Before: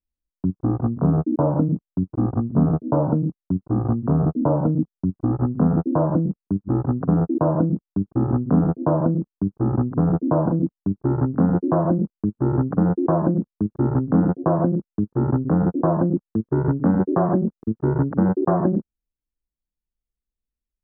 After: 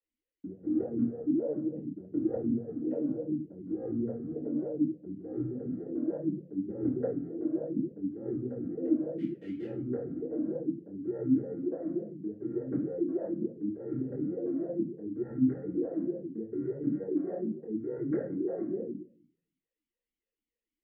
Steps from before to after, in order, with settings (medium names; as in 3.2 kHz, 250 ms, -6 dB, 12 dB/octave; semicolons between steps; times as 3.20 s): 15.20–15.63 s: peaking EQ 480 Hz -15 dB 1.1 oct; compressor with a negative ratio -28 dBFS, ratio -1; 9.18–9.66 s: small samples zeroed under -37 dBFS; simulated room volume 47 m³, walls mixed, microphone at 2.3 m; talking filter e-i 3.4 Hz; trim -5.5 dB